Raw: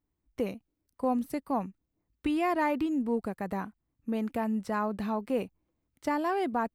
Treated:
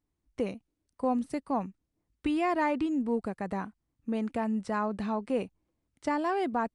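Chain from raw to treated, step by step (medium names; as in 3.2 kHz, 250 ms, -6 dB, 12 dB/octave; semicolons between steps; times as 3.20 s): resampled via 22.05 kHz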